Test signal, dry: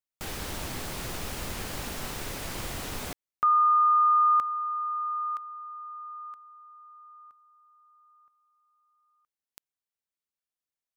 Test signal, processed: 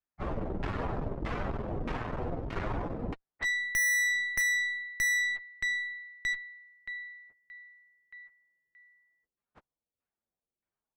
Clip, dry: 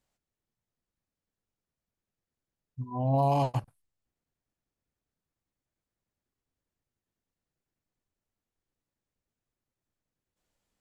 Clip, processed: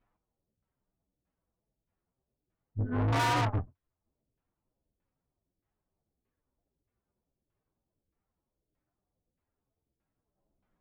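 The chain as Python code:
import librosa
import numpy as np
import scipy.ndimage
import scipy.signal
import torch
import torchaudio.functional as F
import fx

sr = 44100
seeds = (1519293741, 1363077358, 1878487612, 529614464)

p1 = fx.partial_stretch(x, sr, pct=130)
p2 = fx.rider(p1, sr, range_db=4, speed_s=2.0)
p3 = p1 + (p2 * 10.0 ** (-1.5 / 20.0))
p4 = fx.filter_lfo_lowpass(p3, sr, shape='saw_down', hz=1.6, low_hz=390.0, high_hz=2100.0, q=1.1)
p5 = fx.tube_stage(p4, sr, drive_db=34.0, bias=0.6)
y = p5 * 10.0 ** (8.0 / 20.0)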